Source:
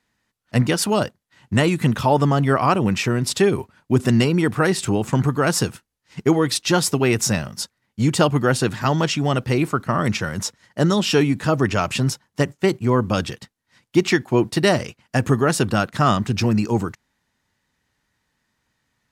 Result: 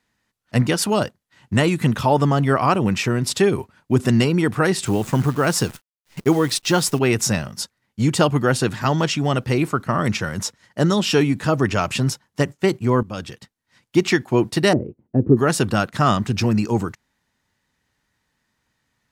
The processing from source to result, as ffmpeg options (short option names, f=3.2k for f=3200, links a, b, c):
-filter_complex "[0:a]asettb=1/sr,asplit=3[a][b][c];[a]atrim=end=4.864[d];[b]atrim=start=4.86:end=6.99,asetpts=PTS-STARTPTS,afade=t=in:d=0.004:c=qsin,afade=t=out:st=2.126:d=0.004:c=qsin,acrusher=bits=7:dc=4:mix=0:aa=0.000001[e];[c]atrim=start=6.986[f];[d][e]acrossfade=d=0.004:c1=hsin:c2=qsin[g];[g][f]acrossfade=d=0.004:c1=qsin:c2=hsin,asettb=1/sr,asplit=3[h][i][j];[h]atrim=end=14.734[k];[i]atrim=start=14.73:end=15.37,asetpts=PTS-STARTPTS,afade=t=in:d=0.004:c=qsin,afade=t=out:st=0.636:d=0.004:c=qsin,lowpass=f=360:t=q:w=2.6[l];[j]atrim=start=15.366[m];[k][l]acrossfade=d=0.004:c1=hsin:c2=qsin[n];[n][m]acrossfade=d=0.004:c1=qsin:c2=hsin,asplit=2[o][p];[o]atrim=end=13.03,asetpts=PTS-STARTPTS,afade=t=out:st=13.026:d=0.004:c=hsin:silence=0.211349[q];[p]atrim=start=13.03,asetpts=PTS-STARTPTS,afade=t=in:d=1.08:c=qsin:silence=0.211349[r];[q][r]concat=n=2:v=0:a=1"